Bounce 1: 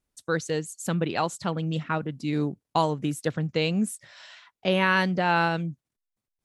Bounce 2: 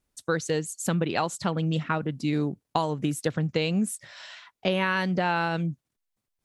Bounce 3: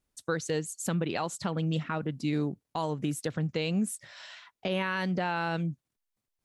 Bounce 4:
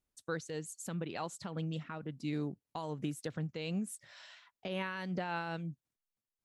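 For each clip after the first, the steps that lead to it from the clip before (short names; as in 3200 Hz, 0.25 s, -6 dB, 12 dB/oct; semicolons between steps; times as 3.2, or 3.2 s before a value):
compressor, threshold -25 dBFS, peak gain reduction 8 dB; gain +3.5 dB
limiter -16.5 dBFS, peak gain reduction 8 dB; gain -3 dB
noise-modulated level, depth 60%; gain -5 dB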